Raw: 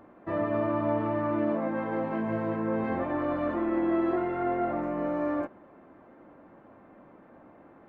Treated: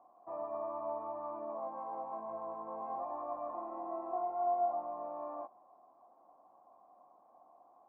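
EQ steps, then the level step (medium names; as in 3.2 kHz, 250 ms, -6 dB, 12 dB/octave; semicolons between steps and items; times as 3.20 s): cascade formant filter a; peaking EQ 110 Hz -8 dB 1.2 oct; +3.0 dB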